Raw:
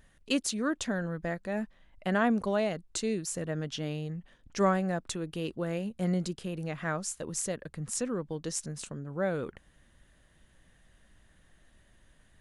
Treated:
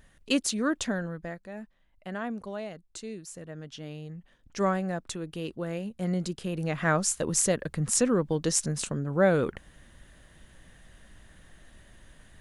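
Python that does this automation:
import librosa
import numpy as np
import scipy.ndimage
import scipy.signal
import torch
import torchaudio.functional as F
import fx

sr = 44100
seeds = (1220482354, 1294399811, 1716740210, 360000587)

y = fx.gain(x, sr, db=fx.line((0.85, 3.0), (1.53, -8.0), (3.51, -8.0), (4.68, -0.5), (6.06, -0.5), (6.98, 8.5)))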